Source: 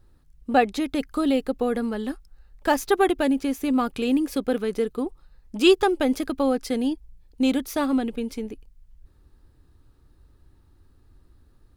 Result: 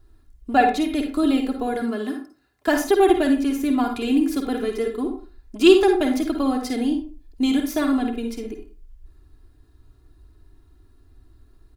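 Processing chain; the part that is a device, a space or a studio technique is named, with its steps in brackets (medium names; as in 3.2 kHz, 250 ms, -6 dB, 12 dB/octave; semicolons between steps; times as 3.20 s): 1.73–2.68 s: high-pass 110 Hz 24 dB/octave; microphone above a desk (comb 2.9 ms, depth 76%; reverberation RT60 0.35 s, pre-delay 47 ms, DRR 4.5 dB); trim -1 dB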